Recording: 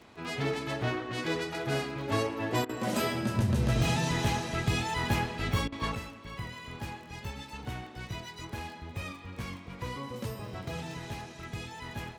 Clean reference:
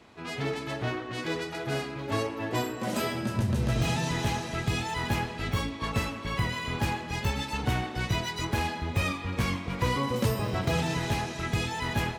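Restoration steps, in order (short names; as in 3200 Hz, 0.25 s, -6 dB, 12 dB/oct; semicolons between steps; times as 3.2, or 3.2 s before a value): de-click; interpolate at 2.65/5.68, 41 ms; gain correction +10.5 dB, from 5.95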